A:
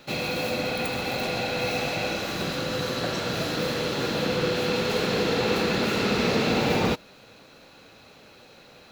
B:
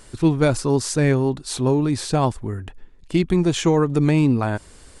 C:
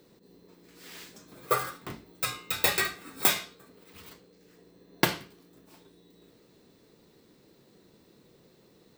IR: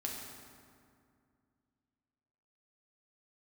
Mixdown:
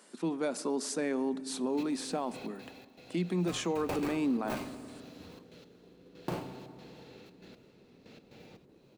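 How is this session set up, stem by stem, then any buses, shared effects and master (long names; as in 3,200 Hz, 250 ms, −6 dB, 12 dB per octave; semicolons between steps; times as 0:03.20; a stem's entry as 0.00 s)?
0:02.35 −9 dB → 0:02.80 −18.5 dB, 1.70 s, no send, parametric band 1,100 Hz −7 dB 1 octave; downward compressor 6 to 1, threshold −33 dBFS, peak gain reduction 12.5 dB; gate pattern "x....x.xx.xxxx." 118 BPM −12 dB
−8.5 dB, 0.00 s, send −17 dB, Chebyshev high-pass with heavy ripple 170 Hz, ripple 3 dB
−2.0 dB, 1.25 s, muted 0:02.43–0:03.32, send −10 dB, running median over 25 samples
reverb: on, RT60 2.3 s, pre-delay 4 ms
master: brickwall limiter −23.5 dBFS, peak gain reduction 10.5 dB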